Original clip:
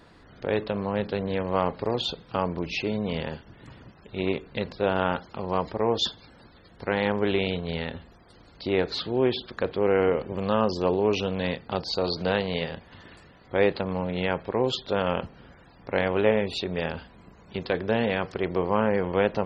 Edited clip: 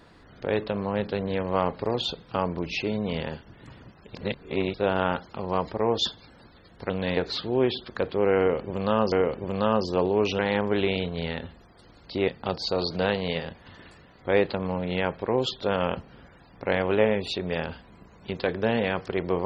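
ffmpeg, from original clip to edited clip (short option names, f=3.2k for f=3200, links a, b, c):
-filter_complex "[0:a]asplit=8[a][b][c][d][e][f][g][h];[a]atrim=end=4.152[i];[b]atrim=start=4.148:end=4.742,asetpts=PTS-STARTPTS,areverse[j];[c]atrim=start=4.738:end=6.902[k];[d]atrim=start=11.268:end=11.542[l];[e]atrim=start=8.788:end=10.742[m];[f]atrim=start=9.998:end=11.272[n];[g]atrim=start=6.898:end=8.792[o];[h]atrim=start=11.538[p];[i][j]acrossfade=d=0.004:c1=hsin:c2=hsin[q];[q][k]acrossfade=d=0.004:c1=hsin:c2=hsin[r];[r][l]acrossfade=d=0.004:c1=hsin:c2=hsin[s];[s][m]acrossfade=d=0.004:c1=hsin:c2=hsin[t];[t][n]acrossfade=d=0.004:c1=hsin:c2=hsin[u];[u][o]acrossfade=d=0.004:c1=hsin:c2=hsin[v];[v][p]acrossfade=d=0.004:c1=hsin:c2=hsin"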